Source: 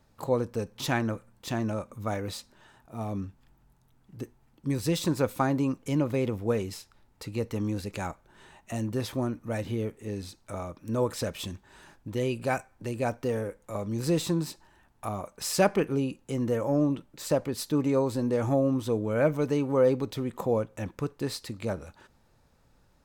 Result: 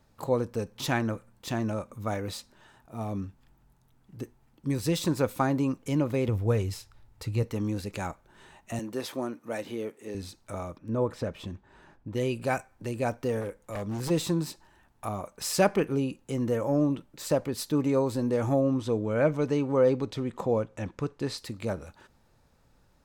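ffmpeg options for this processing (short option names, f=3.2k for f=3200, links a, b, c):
-filter_complex "[0:a]asettb=1/sr,asplit=3[a][b][c];[a]atrim=end=6.284[d];[b]atrim=start=6.28:end=7.43,asetpts=PTS-STARTPTS,afade=t=in:d=0.004:c=qsin,afade=t=out:st=1.146:d=0.004:c=qsin,lowshelf=f=150:t=q:w=1.5:g=7[e];[c]atrim=start=7.426[f];[d][e]acrossfade=d=0.004:c1=hsin:c2=qsin[g];[g][f]acrossfade=d=0.004:c1=qsin:c2=hsin,asettb=1/sr,asplit=3[h][i][j];[h]atrim=end=8.794[k];[i]atrim=start=8.79:end=10.15,asetpts=PTS-STARTPTS,afade=t=in:d=0.004:c=qsin,afade=t=out:st=1.356:d=0.004:c=qsin,highpass=280[l];[j]atrim=start=10.146[m];[k][l]acrossfade=d=0.004:c1=hsin:c2=qsin[n];[n][m]acrossfade=d=0.004:c1=qsin:c2=hsin,asettb=1/sr,asplit=3[o][p][q];[o]atrim=end=10.784[r];[p]atrim=start=10.78:end=12.15,asetpts=PTS-STARTPTS,afade=t=in:d=0.004:c=qsin,afade=t=out:st=1.366:d=0.004:c=qsin,lowpass=f=1.4k:p=1[s];[q]atrim=start=12.146[t];[r][s]acrossfade=d=0.004:c1=hsin:c2=qsin[u];[u][t]acrossfade=d=0.004:c1=qsin:c2=hsin,asplit=3[v][w][x];[v]afade=t=out:st=13.4:d=0.02[y];[w]aeval=exprs='0.0422*(abs(mod(val(0)/0.0422+3,4)-2)-1)':c=same,afade=t=in:st=13.4:d=0.02,afade=t=out:st=14.09:d=0.02[z];[x]afade=t=in:st=14.09:d=0.02[aa];[y][z][aa]amix=inputs=3:normalize=0,asettb=1/sr,asplit=3[ab][ac][ad];[ab]atrim=end=18.614[ae];[ac]atrim=start=18.61:end=21.38,asetpts=PTS-STARTPTS,afade=t=in:d=0.004:c=qsin,afade=t=out:st=2.766:d=0.004:c=qsin,lowpass=7.7k[af];[ad]atrim=start=21.376[ag];[ae][af]acrossfade=d=0.004:c1=hsin:c2=qsin[ah];[ah][ag]acrossfade=d=0.004:c1=qsin:c2=hsin"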